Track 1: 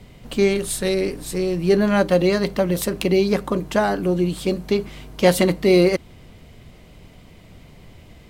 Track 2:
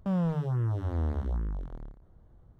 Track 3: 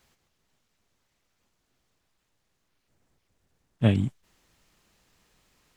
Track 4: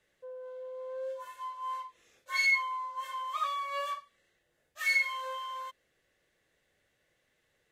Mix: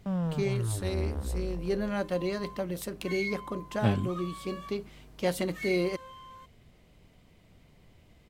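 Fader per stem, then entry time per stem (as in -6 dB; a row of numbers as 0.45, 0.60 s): -13.5, -2.5, -5.5, -10.0 dB; 0.00, 0.00, 0.00, 0.75 s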